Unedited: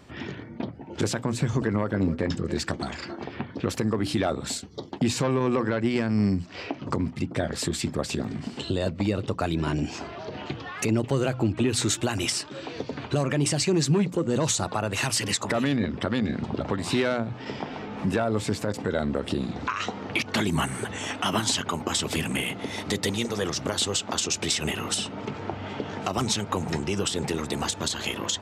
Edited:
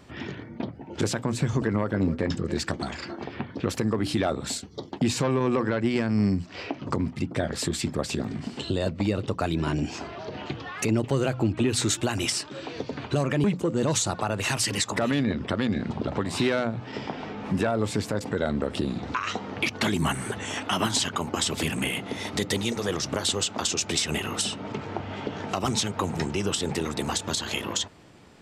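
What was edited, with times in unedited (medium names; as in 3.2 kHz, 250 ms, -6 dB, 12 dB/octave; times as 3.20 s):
13.44–13.97 s: delete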